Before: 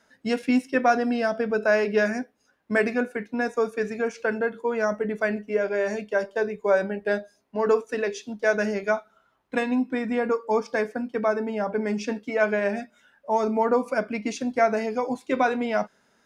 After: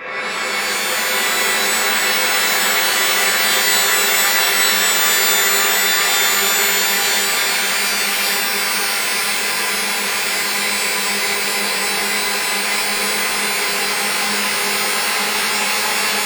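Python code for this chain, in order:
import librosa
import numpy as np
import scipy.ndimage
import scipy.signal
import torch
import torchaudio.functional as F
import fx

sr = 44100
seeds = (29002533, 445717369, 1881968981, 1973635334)

y = np.flip(x).copy()
y = fx.highpass(y, sr, hz=500.0, slope=6)
y = fx.band_shelf(y, sr, hz=1800.0, db=10.0, octaves=2.9)
y = fx.level_steps(y, sr, step_db=10)
y = fx.quant_dither(y, sr, seeds[0], bits=8, dither='none')
y = fx.spec_gate(y, sr, threshold_db=-15, keep='weak')
y = fx.filter_lfo_lowpass(y, sr, shape='saw_up', hz=0.16, low_hz=860.0, high_hz=5000.0, q=1.2)
y = fx.paulstretch(y, sr, seeds[1], factor=14.0, window_s=1.0, from_s=9.78)
y = y + 10.0 ** (-6.0 / 20.0) * np.pad(y, (int(910 * sr / 1000.0), 0))[:len(y)]
y = fx.rev_shimmer(y, sr, seeds[2], rt60_s=3.7, semitones=12, shimmer_db=-2, drr_db=-10.5)
y = y * 10.0 ** (6.5 / 20.0)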